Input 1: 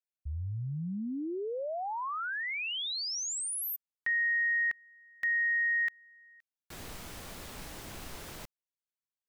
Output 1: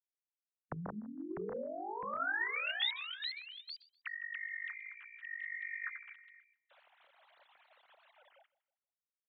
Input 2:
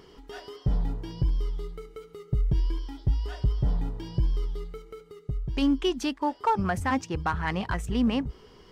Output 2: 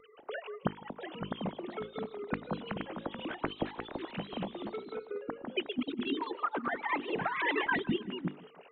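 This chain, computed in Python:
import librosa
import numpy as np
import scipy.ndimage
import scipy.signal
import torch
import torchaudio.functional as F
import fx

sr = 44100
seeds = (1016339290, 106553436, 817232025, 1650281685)

y = fx.sine_speech(x, sr)
y = fx.hum_notches(y, sr, base_hz=50, count=9)
y = fx.dynamic_eq(y, sr, hz=730.0, q=1.5, threshold_db=-40.0, ratio=5.0, max_db=-6)
y = fx.over_compress(y, sr, threshold_db=-32.0, ratio=-0.5)
y = fx.hpss(y, sr, part='harmonic', gain_db=-10)
y = fx.vibrato(y, sr, rate_hz=1.5, depth_cents=8.1)
y = fx.echo_feedback(y, sr, ms=159, feedback_pct=35, wet_db=-21.0)
y = fx.echo_pitch(y, sr, ms=728, semitones=2, count=2, db_per_echo=-6.0)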